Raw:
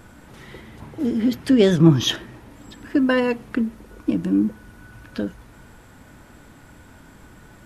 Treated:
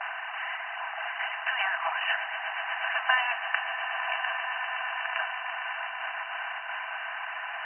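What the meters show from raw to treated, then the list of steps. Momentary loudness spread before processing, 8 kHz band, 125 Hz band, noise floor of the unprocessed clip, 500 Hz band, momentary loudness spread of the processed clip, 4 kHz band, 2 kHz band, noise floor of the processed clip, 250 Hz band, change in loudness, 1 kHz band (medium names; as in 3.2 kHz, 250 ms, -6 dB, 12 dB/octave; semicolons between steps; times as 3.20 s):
15 LU, under -40 dB, under -40 dB, -48 dBFS, -16.5 dB, 8 LU, -4.5 dB, +7.0 dB, -37 dBFS, under -40 dB, -9.5 dB, +6.5 dB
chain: spectral levelling over time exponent 0.4; gate with hold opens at -14 dBFS; reverb removal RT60 1.8 s; brick-wall FIR band-pass 650–3000 Hz; echo with a slow build-up 122 ms, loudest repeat 8, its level -13 dB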